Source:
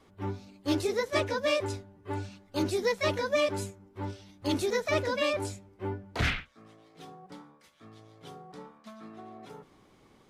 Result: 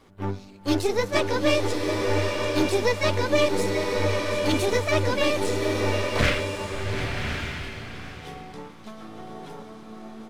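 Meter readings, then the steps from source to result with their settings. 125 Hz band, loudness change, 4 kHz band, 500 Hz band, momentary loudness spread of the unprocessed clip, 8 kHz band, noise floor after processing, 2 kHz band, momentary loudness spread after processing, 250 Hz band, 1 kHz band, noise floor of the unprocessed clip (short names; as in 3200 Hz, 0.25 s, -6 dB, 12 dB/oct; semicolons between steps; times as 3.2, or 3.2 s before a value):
+8.5 dB, +6.5 dB, +7.5 dB, +7.0 dB, 21 LU, +8.0 dB, -45 dBFS, +7.0 dB, 18 LU, +7.5 dB, +7.0 dB, -61 dBFS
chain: half-wave gain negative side -7 dB; on a send: echo 0.736 s -12.5 dB; on the sum: bloom reverb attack 1.16 s, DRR 2 dB; gain +7.5 dB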